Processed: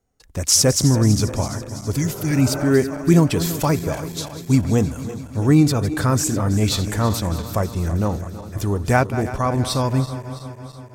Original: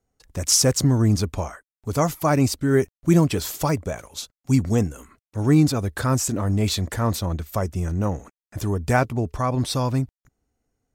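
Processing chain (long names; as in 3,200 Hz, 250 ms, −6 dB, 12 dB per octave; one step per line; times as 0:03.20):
feedback delay that plays each chunk backwards 165 ms, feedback 76%, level −12.5 dB
healed spectral selection 0:01.98–0:02.59, 340–1,600 Hz both
level +2.5 dB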